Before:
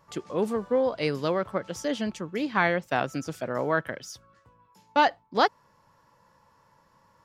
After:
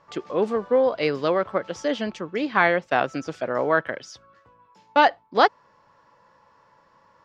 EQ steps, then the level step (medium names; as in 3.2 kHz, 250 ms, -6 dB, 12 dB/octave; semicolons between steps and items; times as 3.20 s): distance through air 140 m; tone controls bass -9 dB, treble +1 dB; band-stop 920 Hz, Q 25; +6.0 dB